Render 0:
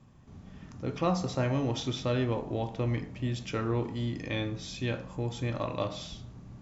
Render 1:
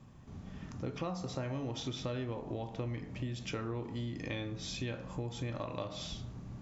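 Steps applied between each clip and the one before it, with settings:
downward compressor, threshold −37 dBFS, peak gain reduction 13.5 dB
level +1.5 dB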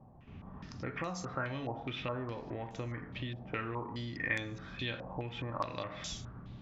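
dynamic equaliser 1,700 Hz, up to +7 dB, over −58 dBFS, Q 1.1
low-pass on a step sequencer 4.8 Hz 760–6,800 Hz
level −2.5 dB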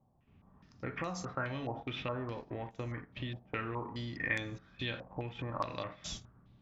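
noise gate −42 dBFS, range −14 dB

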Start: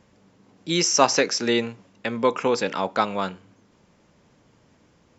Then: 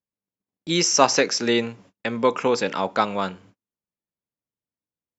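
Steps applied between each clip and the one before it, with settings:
noise gate −50 dBFS, range −40 dB
level +1 dB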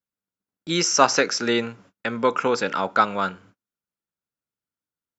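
parametric band 1,400 Hz +10 dB 0.37 octaves
level −1.5 dB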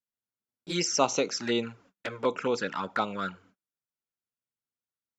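flanger swept by the level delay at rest 8.3 ms, full sweep at −17 dBFS
level −4.5 dB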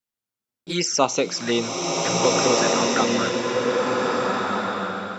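slow-attack reverb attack 1,660 ms, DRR −3.5 dB
level +5 dB

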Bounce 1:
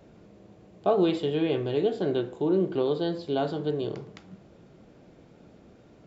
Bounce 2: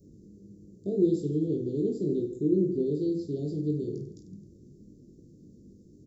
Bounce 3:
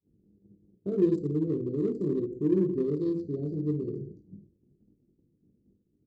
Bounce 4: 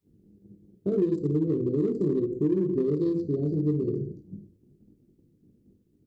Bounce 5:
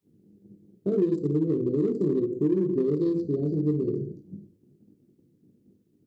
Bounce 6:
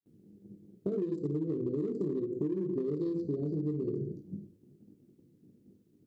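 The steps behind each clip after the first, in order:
inverse Chebyshev band-stop filter 880–2,500 Hz, stop band 60 dB; reverse bouncing-ball delay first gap 20 ms, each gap 1.5×, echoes 5
adaptive Wiener filter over 25 samples; downward expander −42 dBFS
downward compressor, threshold −28 dBFS, peak gain reduction 10 dB; on a send at −20.5 dB: convolution reverb RT60 0.50 s, pre-delay 3 ms; on the sum: level +6.5 dB
high-pass filter 120 Hz 12 dB per octave; level +1 dB
downward compressor, threshold −30 dBFS, peak gain reduction 11 dB; noise gate with hold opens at −60 dBFS

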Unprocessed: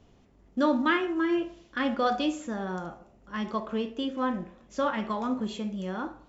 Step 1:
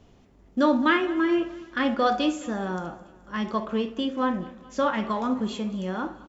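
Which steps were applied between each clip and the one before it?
repeating echo 213 ms, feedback 51%, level −20 dB
level +3.5 dB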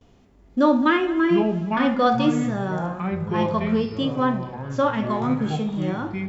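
delay with pitch and tempo change per echo 497 ms, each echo −6 semitones, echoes 3, each echo −6 dB
noise gate with hold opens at −51 dBFS
harmonic and percussive parts rebalanced harmonic +7 dB
level −3.5 dB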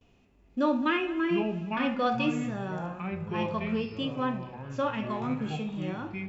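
parametric band 2,600 Hz +13 dB 0.27 octaves
level −8.5 dB

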